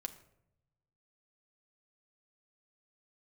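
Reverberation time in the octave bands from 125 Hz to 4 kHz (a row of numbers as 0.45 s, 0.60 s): 1.6 s, 1.0 s, 0.90 s, 0.70 s, 0.60 s, 0.45 s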